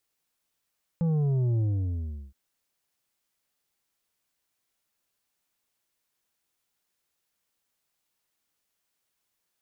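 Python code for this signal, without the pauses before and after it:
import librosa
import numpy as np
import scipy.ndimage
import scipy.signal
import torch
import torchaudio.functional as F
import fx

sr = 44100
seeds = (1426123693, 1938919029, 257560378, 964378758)

y = fx.sub_drop(sr, level_db=-23, start_hz=170.0, length_s=1.32, drive_db=7.0, fade_s=0.74, end_hz=65.0)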